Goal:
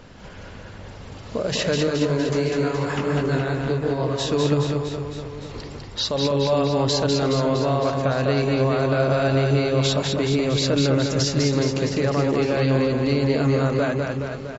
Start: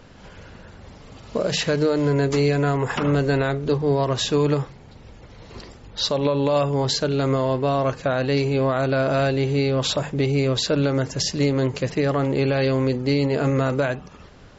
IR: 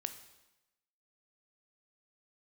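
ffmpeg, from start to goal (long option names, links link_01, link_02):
-filter_complex "[0:a]alimiter=limit=-16dB:level=0:latency=1:release=142,asettb=1/sr,asplit=3[link_01][link_02][link_03];[link_01]atrim=end=1.874[link_04];[link_02]atrim=start=1.87:end=4.3,asetpts=PTS-STARTPTS,afade=type=in:duration=0.004:curve=qsin,afade=type=out:start_time=2.426:duration=0.004:curve=qsin,flanger=delay=17.5:depth=6.2:speed=2.9[link_05];[link_03]atrim=start=4.296[link_06];[link_04][link_05]acrossfade=duration=0.004:curve1=hsin:curve2=qsin[link_07];[link_07][link_06]acrossfade=duration=0.004:curve1=qsin:curve2=hsin,aecho=1:1:200|420|662|928.2|1221:0.631|0.398|0.251|0.158|0.1,volume=2dB"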